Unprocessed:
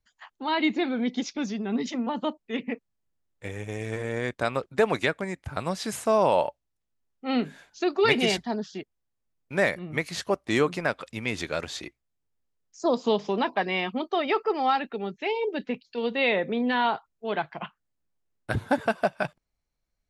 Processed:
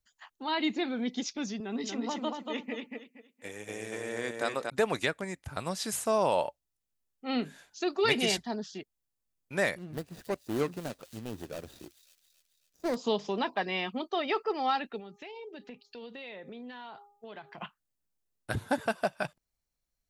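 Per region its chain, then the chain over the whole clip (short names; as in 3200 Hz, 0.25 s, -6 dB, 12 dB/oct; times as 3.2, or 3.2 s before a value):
1.6–4.7 HPF 220 Hz + feedback echo 0.235 s, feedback 25%, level -4 dB
9.78–12.96 median filter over 41 samples + thin delay 0.272 s, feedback 53%, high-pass 4200 Hz, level -5 dB
14.99–17.58 de-hum 407.4 Hz, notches 3 + compressor 8:1, threshold -36 dBFS
whole clip: high shelf 5000 Hz +10.5 dB; notch 2200 Hz, Q 28; gain -5.5 dB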